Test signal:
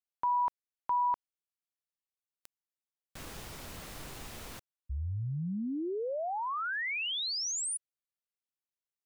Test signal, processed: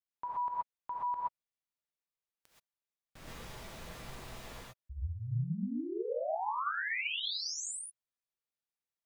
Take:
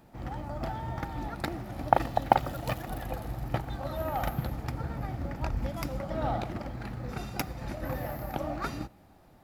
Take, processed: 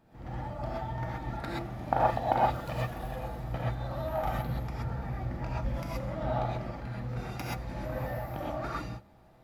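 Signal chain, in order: high shelf 5800 Hz -7.5 dB; non-linear reverb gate 0.15 s rising, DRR -6 dB; gain -7.5 dB

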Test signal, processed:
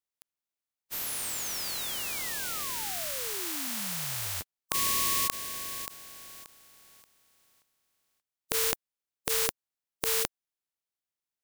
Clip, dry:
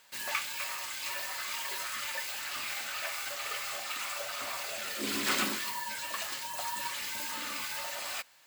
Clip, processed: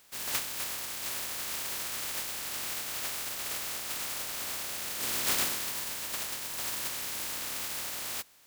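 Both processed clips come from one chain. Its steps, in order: spectral contrast lowered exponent 0.18; gain +1.5 dB

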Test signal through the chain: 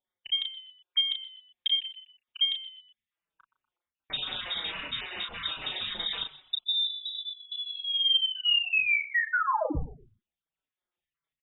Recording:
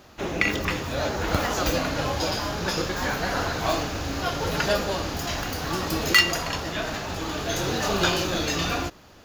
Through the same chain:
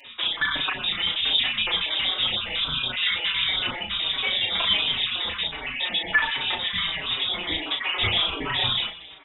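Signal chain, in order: random spectral dropouts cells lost 45%; in parallel at 0 dB: compressor, threshold -38 dBFS; on the sum: soft clip -16.5 dBFS; doubler 35 ms -5 dB; on a send: frequency-shifting echo 0.122 s, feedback 37%, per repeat +66 Hz, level -16 dB; on the sum: inverted band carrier 3700 Hz; endless flanger 4.9 ms -1.4 Hz; gain +4 dB

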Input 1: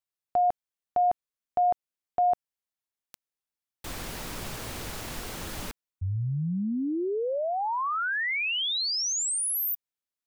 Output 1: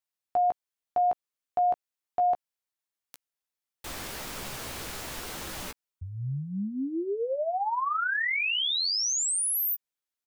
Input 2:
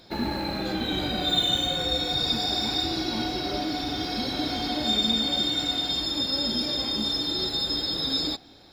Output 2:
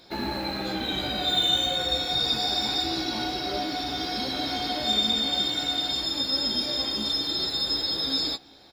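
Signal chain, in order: low shelf 320 Hz -6 dB; doubler 15 ms -7 dB

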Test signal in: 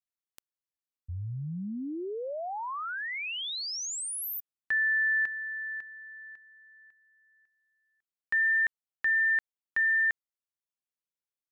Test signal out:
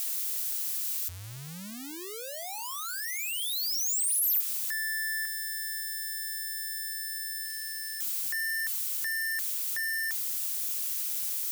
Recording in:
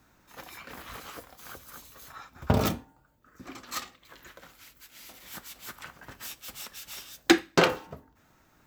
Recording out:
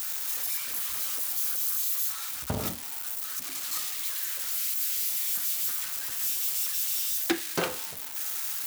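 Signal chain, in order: switching spikes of -16.5 dBFS; gain -8 dB

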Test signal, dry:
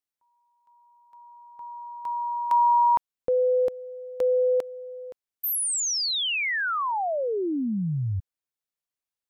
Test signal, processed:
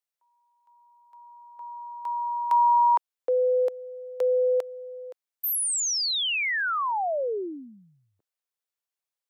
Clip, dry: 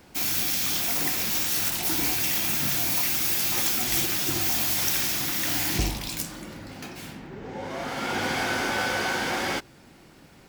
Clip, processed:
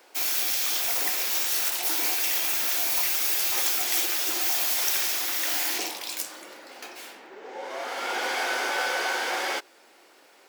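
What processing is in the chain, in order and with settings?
HPF 400 Hz 24 dB/oct

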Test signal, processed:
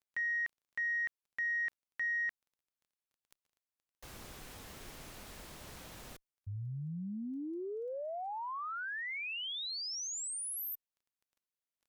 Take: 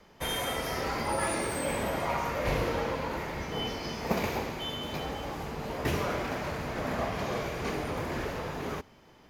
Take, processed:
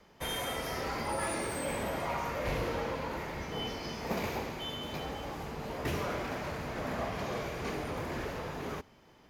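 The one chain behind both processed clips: added harmonics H 2 -25 dB, 5 -15 dB, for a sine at -12.5 dBFS; crackle 12/s -52 dBFS; gain -8.5 dB

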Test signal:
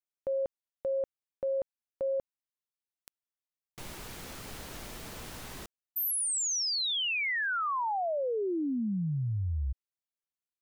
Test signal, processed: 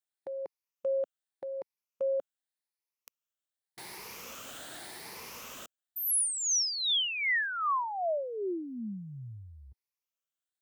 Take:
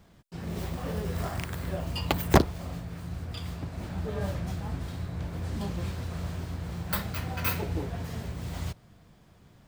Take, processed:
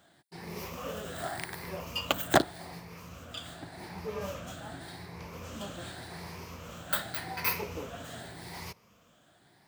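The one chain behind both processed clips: moving spectral ripple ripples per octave 0.83, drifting +0.86 Hz, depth 9 dB; HPF 530 Hz 6 dB/oct

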